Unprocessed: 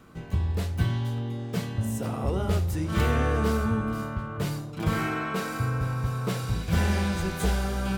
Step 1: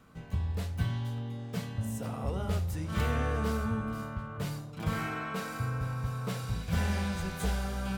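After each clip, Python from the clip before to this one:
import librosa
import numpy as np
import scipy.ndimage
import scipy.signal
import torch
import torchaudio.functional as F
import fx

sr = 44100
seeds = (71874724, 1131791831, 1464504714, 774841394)

y = fx.peak_eq(x, sr, hz=350.0, db=-8.5, octaves=0.33)
y = y * librosa.db_to_amplitude(-5.5)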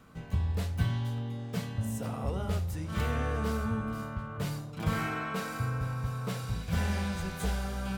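y = fx.rider(x, sr, range_db=10, speed_s=2.0)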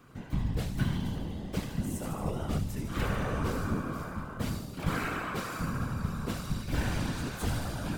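y = fx.echo_wet_highpass(x, sr, ms=75, feedback_pct=71, hz=3800.0, wet_db=-6.0)
y = fx.whisperise(y, sr, seeds[0])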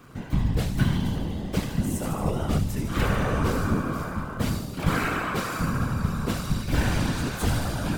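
y = fx.dmg_crackle(x, sr, seeds[1], per_s=150.0, level_db=-54.0)
y = y * librosa.db_to_amplitude(7.0)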